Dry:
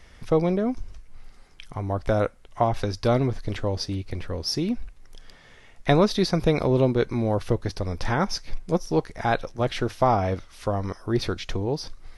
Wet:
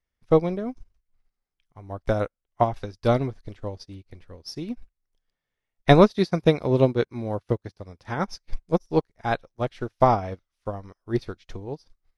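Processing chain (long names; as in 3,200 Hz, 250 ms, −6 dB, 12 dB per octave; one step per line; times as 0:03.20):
0:06.10–0:08.19: high-pass filter 58 Hz 12 dB per octave
expander for the loud parts 2.5 to 1, over −42 dBFS
level +6 dB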